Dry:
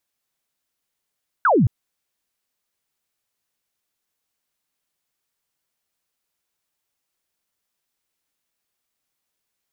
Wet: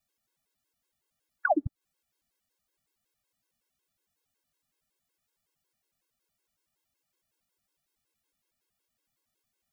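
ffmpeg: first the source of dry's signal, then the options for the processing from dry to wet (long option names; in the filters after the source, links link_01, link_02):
-f lavfi -i "aevalsrc='0.237*clip(t/0.002,0,1)*clip((0.22-t)/0.002,0,1)*sin(2*PI*1600*0.22/log(95/1600)*(exp(log(95/1600)*t/0.22)-1))':duration=0.22:sample_rate=44100"
-af "lowshelf=frequency=380:gain=7,alimiter=limit=-16.5dB:level=0:latency=1:release=212,afftfilt=real='re*gt(sin(2*PI*5.4*pts/sr)*(1-2*mod(floor(b*sr/1024/280),2)),0)':imag='im*gt(sin(2*PI*5.4*pts/sr)*(1-2*mod(floor(b*sr/1024/280),2)),0)':win_size=1024:overlap=0.75"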